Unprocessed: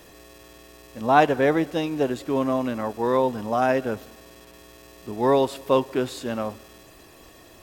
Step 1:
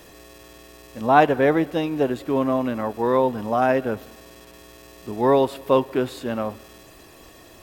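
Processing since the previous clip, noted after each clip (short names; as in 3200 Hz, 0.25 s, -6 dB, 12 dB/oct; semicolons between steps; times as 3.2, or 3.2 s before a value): dynamic EQ 6500 Hz, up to -7 dB, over -50 dBFS, Q 0.81; gain +2 dB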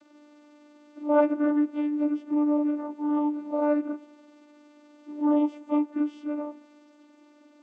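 inharmonic rescaling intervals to 90%; vocoder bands 16, saw 296 Hz; gain -3 dB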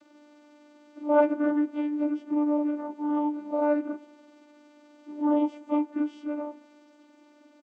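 doubler 19 ms -11 dB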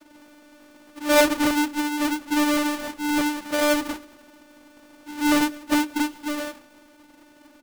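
half-waves squared off; on a send at -18 dB: reverb RT60 0.55 s, pre-delay 3 ms; on the sum: gain +1.5 dB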